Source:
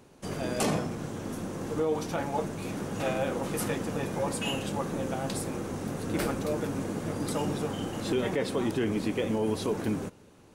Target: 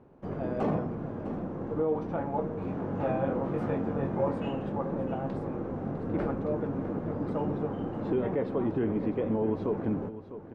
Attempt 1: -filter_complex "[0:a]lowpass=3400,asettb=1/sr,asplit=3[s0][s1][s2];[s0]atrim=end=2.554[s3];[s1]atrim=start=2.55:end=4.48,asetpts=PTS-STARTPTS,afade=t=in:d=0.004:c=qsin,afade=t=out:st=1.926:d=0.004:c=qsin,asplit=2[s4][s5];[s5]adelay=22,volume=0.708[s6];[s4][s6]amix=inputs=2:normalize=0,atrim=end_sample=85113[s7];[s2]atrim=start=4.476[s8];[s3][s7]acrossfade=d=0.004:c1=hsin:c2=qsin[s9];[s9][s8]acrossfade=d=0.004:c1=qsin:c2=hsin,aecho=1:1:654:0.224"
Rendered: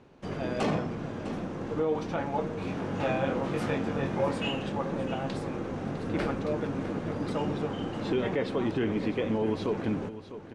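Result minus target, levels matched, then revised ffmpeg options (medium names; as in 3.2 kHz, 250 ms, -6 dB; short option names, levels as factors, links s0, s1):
4 kHz band +15.5 dB
-filter_complex "[0:a]lowpass=1100,asettb=1/sr,asplit=3[s0][s1][s2];[s0]atrim=end=2.554[s3];[s1]atrim=start=2.55:end=4.48,asetpts=PTS-STARTPTS,afade=t=in:d=0.004:c=qsin,afade=t=out:st=1.926:d=0.004:c=qsin,asplit=2[s4][s5];[s5]adelay=22,volume=0.708[s6];[s4][s6]amix=inputs=2:normalize=0,atrim=end_sample=85113[s7];[s2]atrim=start=4.476[s8];[s3][s7]acrossfade=d=0.004:c1=hsin:c2=qsin[s9];[s9][s8]acrossfade=d=0.004:c1=qsin:c2=hsin,aecho=1:1:654:0.224"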